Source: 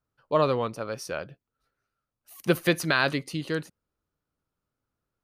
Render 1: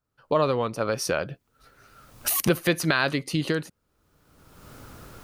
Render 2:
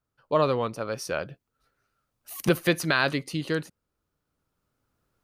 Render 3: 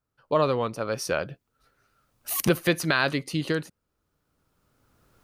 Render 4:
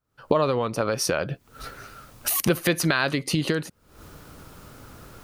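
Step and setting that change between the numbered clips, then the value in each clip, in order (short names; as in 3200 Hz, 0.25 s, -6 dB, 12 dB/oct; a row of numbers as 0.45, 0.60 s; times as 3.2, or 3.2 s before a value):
recorder AGC, rising by: 32, 5.1, 13, 80 dB/s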